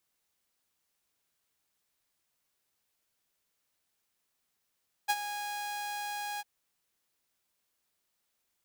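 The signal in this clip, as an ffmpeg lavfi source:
-f lavfi -i "aevalsrc='0.0891*(2*mod(825*t,1)-1)':d=1.352:s=44100,afade=t=in:d=0.021,afade=t=out:st=0.021:d=0.047:silence=0.266,afade=t=out:st=1.32:d=0.032"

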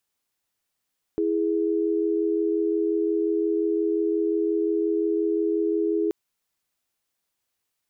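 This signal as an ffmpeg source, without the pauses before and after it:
-f lavfi -i "aevalsrc='0.0668*(sin(2*PI*329.63*t)+sin(2*PI*415.3*t))':d=4.93:s=44100"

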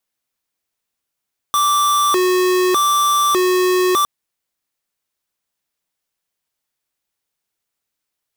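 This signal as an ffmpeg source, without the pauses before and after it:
-f lavfi -i "aevalsrc='0.178*(2*lt(mod((768*t+402/0.83*(0.5-abs(mod(0.83*t,1)-0.5))),1),0.5)-1)':d=2.51:s=44100"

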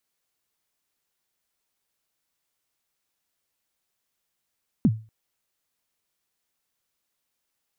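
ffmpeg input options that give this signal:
-f lavfi -i "aevalsrc='0.266*pow(10,-3*t/0.33)*sin(2*PI*(270*0.047/log(110/270)*(exp(log(110/270)*min(t,0.047)/0.047)-1)+110*max(t-0.047,0)))':d=0.24:s=44100"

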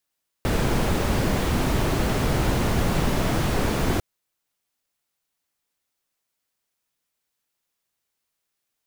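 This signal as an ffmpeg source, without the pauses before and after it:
-f lavfi -i "anoisesrc=c=brown:a=0.394:d=3.55:r=44100:seed=1"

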